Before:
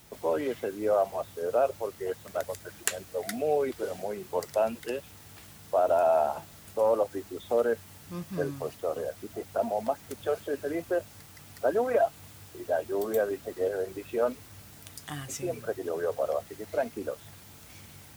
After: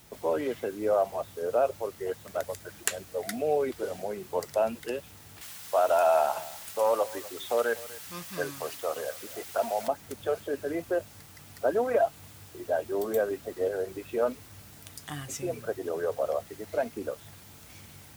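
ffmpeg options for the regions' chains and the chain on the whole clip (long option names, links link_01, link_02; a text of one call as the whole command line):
ffmpeg -i in.wav -filter_complex "[0:a]asettb=1/sr,asplit=3[link_01][link_02][link_03];[link_01]atrim=end=5.414[link_04];[link_02]atrim=start=5.41:end=9.88,asetpts=PTS-STARTPTS,afade=type=in:duration=0.004:curve=qsin,afade=type=out:start_time=4.466:duration=0.004:curve=qsin,tiltshelf=frequency=630:gain=-9,aecho=1:1:246:0.112,atrim=end_sample=197127[link_05];[link_03]atrim=start=9.876[link_06];[link_04][link_05]acrossfade=duration=0.004:curve1=hsin:curve2=qsin[link_07];[link_07][link_06]acrossfade=duration=0.004:curve1=qsin:curve2=hsin" out.wav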